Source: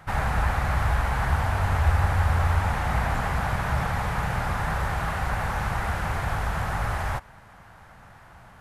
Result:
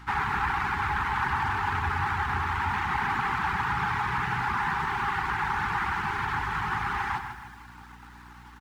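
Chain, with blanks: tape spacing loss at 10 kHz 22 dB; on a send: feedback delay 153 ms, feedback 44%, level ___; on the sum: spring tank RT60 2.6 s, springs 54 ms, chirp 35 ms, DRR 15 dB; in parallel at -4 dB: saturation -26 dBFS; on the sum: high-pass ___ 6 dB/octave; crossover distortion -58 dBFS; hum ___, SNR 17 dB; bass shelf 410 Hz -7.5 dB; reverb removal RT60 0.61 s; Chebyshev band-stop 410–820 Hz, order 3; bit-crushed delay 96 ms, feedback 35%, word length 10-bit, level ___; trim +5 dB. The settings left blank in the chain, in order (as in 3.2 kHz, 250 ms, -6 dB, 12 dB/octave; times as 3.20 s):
-8.5 dB, 270 Hz, 60 Hz, -9 dB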